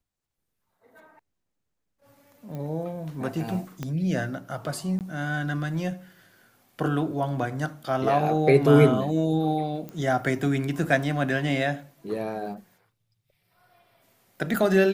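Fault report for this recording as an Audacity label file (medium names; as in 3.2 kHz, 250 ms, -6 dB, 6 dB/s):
2.550000	2.550000	pop -25 dBFS
3.830000	3.830000	pop -18 dBFS
4.990000	5.010000	dropout 18 ms
9.890000	9.890000	pop -23 dBFS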